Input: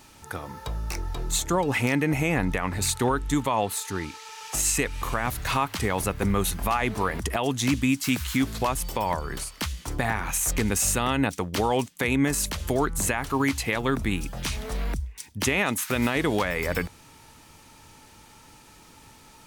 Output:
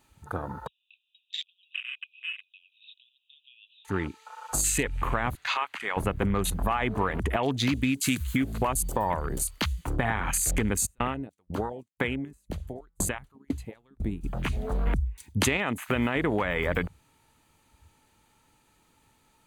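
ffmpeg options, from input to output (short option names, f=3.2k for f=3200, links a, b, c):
-filter_complex "[0:a]asettb=1/sr,asplit=3[a][b][c];[a]atrim=end=0.674[d];[b]atrim=start=0.67:end=3.85,asetpts=PTS-STARTPTS,afade=t=in:d=0.004:c=qsin,afade=t=out:st=3.176:d=0.004:c=qsin,asuperpass=centerf=3100:order=20:qfactor=2.3[e];[c]atrim=start=3.846[f];[d][e]acrossfade=d=0.004:c1=hsin:c2=qsin[g];[g][f]acrossfade=d=0.004:c1=qsin:c2=hsin,asettb=1/sr,asplit=3[h][i][j];[h]atrim=end=5.354[k];[i]atrim=start=5.35:end=5.97,asetpts=PTS-STARTPTS,afade=t=in:d=0.004:c=qsin,afade=t=out:st=0.616:d=0.004:c=qsin,bandpass=f=3.6k:t=q:w=0.52[l];[j]atrim=start=5.966[m];[k][l]acrossfade=d=0.004:c1=hsin:c2=qsin[n];[n][m]acrossfade=d=0.004:c1=qsin:c2=hsin,asettb=1/sr,asplit=3[o][p][q];[o]atrim=end=7.604[r];[p]atrim=start=7.6:end=9.91,asetpts=PTS-STARTPTS,afade=t=in:d=0.004:c=qsin,afade=t=out:st=2.306:d=0.004:c=qsin,highshelf=f=6.9k:g=8.5[s];[q]atrim=start=9.906[t];[r][s]acrossfade=d=0.004:c1=hsin:c2=qsin[u];[u][t]acrossfade=d=0.004:c1=qsin:c2=hsin,asplit=3[v][w][x];[v]afade=t=out:st=10.85:d=0.02[y];[w]aeval=exprs='val(0)*pow(10,-34*if(lt(mod(2*n/s,1),2*abs(2)/1000),1-mod(2*n/s,1)/(2*abs(2)/1000),(mod(2*n/s,1)-2*abs(2)/1000)/(1-2*abs(2)/1000))/20)':c=same,afade=t=in:st=10.85:d=0.02,afade=t=out:st=14.23:d=0.02[z];[x]afade=t=in:st=14.23:d=0.02[aa];[y][z][aa]amix=inputs=3:normalize=0,asplit=3[ab][ac][ad];[ab]atrim=end=14.872[ae];[ac]atrim=start=14.868:end=15.572,asetpts=PTS-STARTPTS,volume=5.5dB[af];[ad]atrim=start=15.568[ag];[ae][af]acrossfade=d=0.004:c1=hsin:c2=hsin[ah];[ah][ag]acrossfade=d=0.004:c1=hsin:c2=hsin,afwtdn=0.0178,equalizer=f=5.4k:w=6.6:g=-12,acompressor=threshold=-25dB:ratio=6,volume=3dB"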